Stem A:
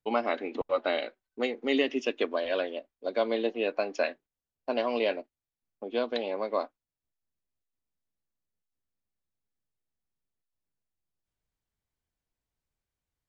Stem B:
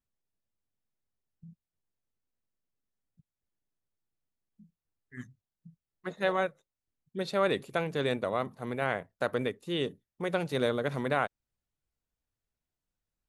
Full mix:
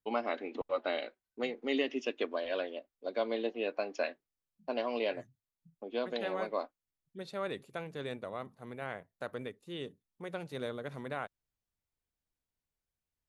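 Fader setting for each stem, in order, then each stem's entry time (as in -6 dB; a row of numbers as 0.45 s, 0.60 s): -5.5 dB, -10.0 dB; 0.00 s, 0.00 s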